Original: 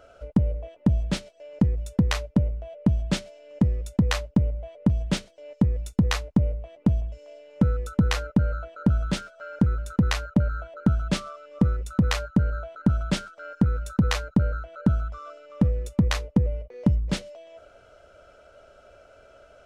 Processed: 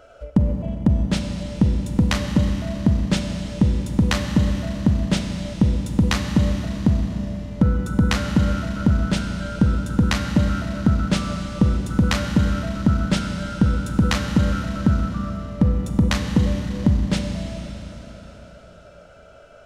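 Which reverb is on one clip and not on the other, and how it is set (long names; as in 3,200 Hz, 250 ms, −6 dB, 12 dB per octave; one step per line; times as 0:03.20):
four-comb reverb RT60 3.9 s, combs from 31 ms, DRR 4 dB
level +3.5 dB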